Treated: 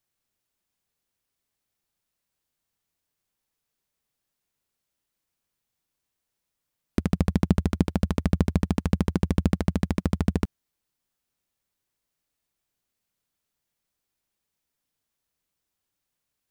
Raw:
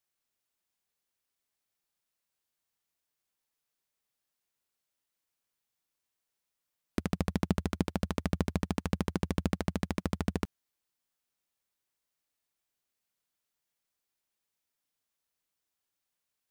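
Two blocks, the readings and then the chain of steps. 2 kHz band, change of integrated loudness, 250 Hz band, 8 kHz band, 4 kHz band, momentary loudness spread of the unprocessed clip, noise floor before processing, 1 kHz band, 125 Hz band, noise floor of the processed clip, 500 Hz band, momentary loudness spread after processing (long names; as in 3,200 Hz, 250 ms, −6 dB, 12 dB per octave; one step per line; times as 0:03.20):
+2.5 dB, +8.0 dB, +8.0 dB, +2.5 dB, +2.5 dB, 4 LU, below −85 dBFS, +3.5 dB, +9.5 dB, −83 dBFS, +5.0 dB, 5 LU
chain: low-shelf EQ 290 Hz +8.5 dB
level +2.5 dB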